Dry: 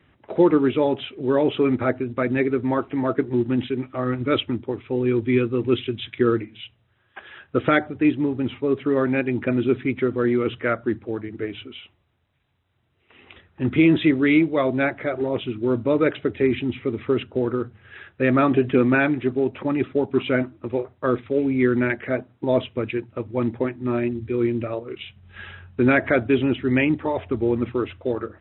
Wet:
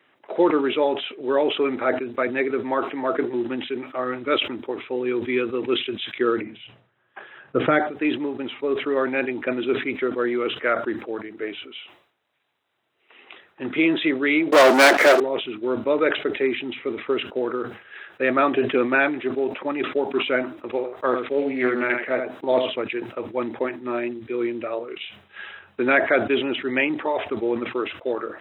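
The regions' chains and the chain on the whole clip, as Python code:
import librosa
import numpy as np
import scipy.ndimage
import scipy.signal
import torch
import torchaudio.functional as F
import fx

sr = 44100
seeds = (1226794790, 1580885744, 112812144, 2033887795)

y = fx.chain(x, sr, fx.lowpass(hz=1400.0, slope=6),
    fx.peak_eq(hz=140.0, db=14.0, octaves=1.1), at=(6.41, 7.79))
y = fx.chain(y, sr, fx.highpass(hz=210.0, slope=24),
    fx.leveller(passes=5), at=(14.52, 15.2))
y = fx.chain(y, sr, fx.echo_single(ms=79, db=-6.5),
    fx.doppler_dist(depth_ms=0.14), at=(20.7, 22.83))
y = scipy.signal.sosfilt(scipy.signal.butter(2, 430.0, 'highpass', fs=sr, output='sos'), y)
y = fx.sustainer(y, sr, db_per_s=110.0)
y = y * 10.0 ** (2.0 / 20.0)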